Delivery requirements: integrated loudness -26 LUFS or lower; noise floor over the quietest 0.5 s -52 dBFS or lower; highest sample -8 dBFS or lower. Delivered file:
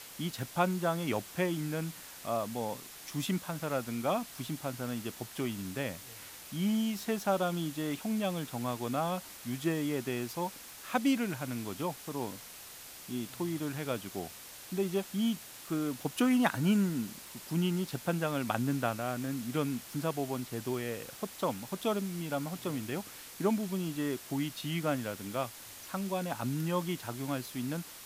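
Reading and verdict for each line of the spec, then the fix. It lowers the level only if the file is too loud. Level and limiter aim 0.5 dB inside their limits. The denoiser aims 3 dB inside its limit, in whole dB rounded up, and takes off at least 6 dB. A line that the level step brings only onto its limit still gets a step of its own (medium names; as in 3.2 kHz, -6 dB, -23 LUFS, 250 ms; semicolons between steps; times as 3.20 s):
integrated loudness -34.5 LUFS: pass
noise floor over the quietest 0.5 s -49 dBFS: fail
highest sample -12.0 dBFS: pass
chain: noise reduction 6 dB, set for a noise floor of -49 dBFS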